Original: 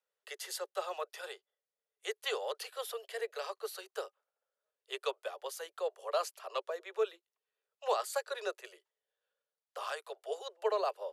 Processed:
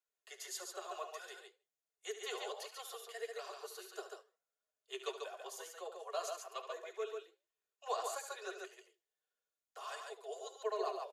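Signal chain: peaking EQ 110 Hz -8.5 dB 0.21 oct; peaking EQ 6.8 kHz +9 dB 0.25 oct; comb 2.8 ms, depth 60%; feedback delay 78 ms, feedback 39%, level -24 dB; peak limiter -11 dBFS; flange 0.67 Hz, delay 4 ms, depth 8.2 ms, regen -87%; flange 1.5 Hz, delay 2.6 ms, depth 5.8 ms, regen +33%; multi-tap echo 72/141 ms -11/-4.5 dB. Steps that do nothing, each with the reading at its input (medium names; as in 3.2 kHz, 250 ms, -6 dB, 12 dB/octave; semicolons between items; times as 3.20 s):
peaking EQ 110 Hz: input has nothing below 340 Hz; peak limiter -11 dBFS: peak at its input -18.5 dBFS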